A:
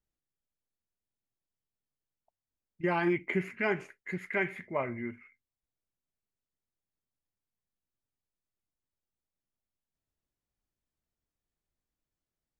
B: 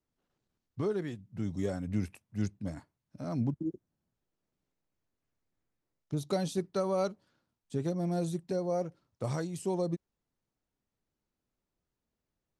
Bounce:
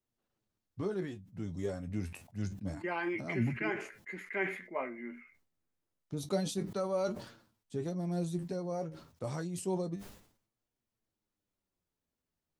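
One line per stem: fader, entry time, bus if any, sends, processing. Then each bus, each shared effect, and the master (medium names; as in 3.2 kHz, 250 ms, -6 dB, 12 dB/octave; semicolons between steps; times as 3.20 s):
-1.0 dB, 0.00 s, no send, high-pass 220 Hz 24 dB/octave
+0.5 dB, 0.00 s, no send, none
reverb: none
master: flange 0.28 Hz, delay 8.3 ms, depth 4.5 ms, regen +46%; decay stretcher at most 97 dB/s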